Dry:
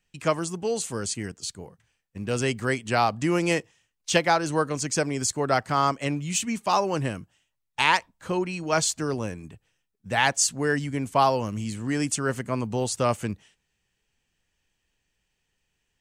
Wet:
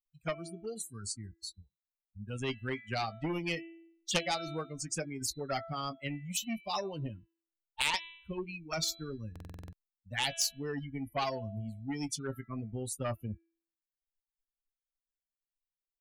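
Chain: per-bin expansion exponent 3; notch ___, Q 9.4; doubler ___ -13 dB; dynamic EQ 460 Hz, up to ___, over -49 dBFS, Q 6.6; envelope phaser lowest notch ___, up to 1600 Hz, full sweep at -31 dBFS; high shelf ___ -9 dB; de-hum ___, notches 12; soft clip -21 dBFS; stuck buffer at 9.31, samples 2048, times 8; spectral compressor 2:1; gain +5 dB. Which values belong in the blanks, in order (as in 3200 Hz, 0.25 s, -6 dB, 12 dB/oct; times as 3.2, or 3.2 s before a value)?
1000 Hz, 18 ms, -7 dB, 340 Hz, 7500 Hz, 332.4 Hz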